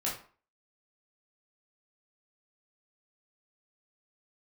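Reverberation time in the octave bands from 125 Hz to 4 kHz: 0.35, 0.40, 0.40, 0.45, 0.40, 0.30 seconds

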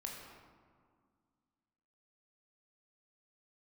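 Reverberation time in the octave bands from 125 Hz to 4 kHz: 2.3, 2.6, 1.9, 2.0, 1.4, 0.90 seconds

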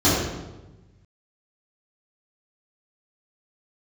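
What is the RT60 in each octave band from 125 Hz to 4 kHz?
1.9, 1.4, 1.2, 1.0, 0.85, 0.80 seconds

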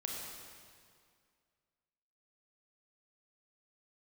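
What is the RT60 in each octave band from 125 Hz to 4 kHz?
2.2, 2.2, 2.1, 2.1, 2.0, 1.8 seconds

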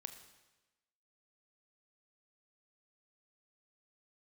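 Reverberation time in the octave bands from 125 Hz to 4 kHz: 1.1, 1.1, 1.1, 1.1, 1.1, 1.1 seconds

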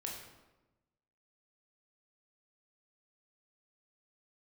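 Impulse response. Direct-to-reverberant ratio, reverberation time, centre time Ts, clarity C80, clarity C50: −1.5 dB, 1.1 s, 48 ms, 5.5 dB, 3.5 dB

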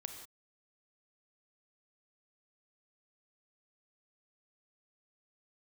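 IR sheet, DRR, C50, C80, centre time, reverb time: 5.5 dB, 6.5 dB, 8.0 dB, 24 ms, non-exponential decay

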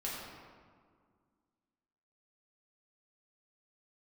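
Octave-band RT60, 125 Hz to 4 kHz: 2.2, 2.5, 1.9, 1.9, 1.4, 1.0 seconds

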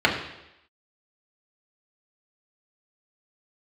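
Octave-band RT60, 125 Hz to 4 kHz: 0.75, 0.85, 0.90, 0.85, 0.90, 0.90 seconds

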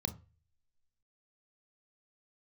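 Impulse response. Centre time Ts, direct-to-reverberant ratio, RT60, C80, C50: 6 ms, 9.0 dB, 0.35 s, 22.5 dB, 15.5 dB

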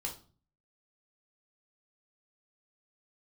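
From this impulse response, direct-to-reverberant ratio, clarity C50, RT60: 0.0 dB, 10.0 dB, 0.40 s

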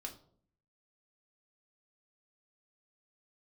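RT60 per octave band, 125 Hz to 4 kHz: 0.85, 0.80, 0.65, 0.50, 0.35, 0.35 seconds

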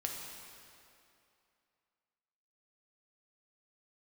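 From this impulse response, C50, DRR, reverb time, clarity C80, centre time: 2.0 dB, −0.5 dB, 2.6 s, 3.0 dB, 96 ms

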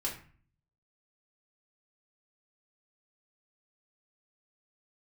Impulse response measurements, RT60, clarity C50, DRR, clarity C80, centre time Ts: 0.40 s, 7.5 dB, −4.0 dB, 12.5 dB, 24 ms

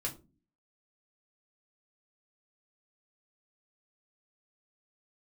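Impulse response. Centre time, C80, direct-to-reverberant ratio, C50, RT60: 12 ms, 21.0 dB, −2.0 dB, 15.5 dB, non-exponential decay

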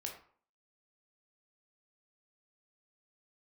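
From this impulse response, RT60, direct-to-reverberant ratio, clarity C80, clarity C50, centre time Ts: 0.50 s, 0.5 dB, 11.0 dB, 7.0 dB, 23 ms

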